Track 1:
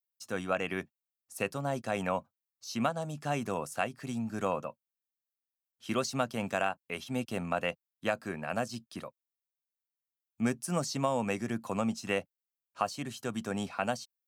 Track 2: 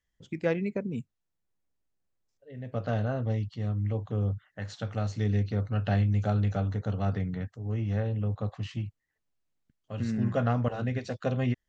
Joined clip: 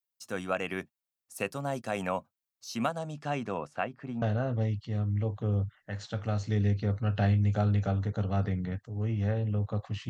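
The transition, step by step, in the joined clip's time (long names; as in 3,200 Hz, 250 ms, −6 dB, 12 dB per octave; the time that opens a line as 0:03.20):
track 1
0:02.98–0:04.22: low-pass filter 7,300 Hz → 1,500 Hz
0:04.22: continue with track 2 from 0:02.91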